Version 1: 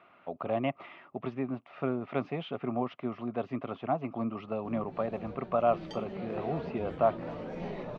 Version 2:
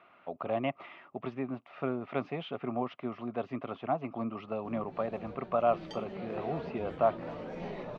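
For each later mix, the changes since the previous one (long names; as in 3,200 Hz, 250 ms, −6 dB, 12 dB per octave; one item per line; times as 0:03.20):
master: add low-shelf EQ 360 Hz −3.5 dB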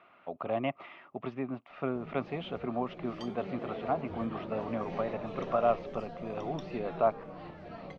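background: entry −2.70 s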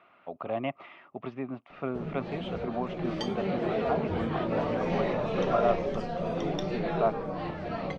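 background +11.0 dB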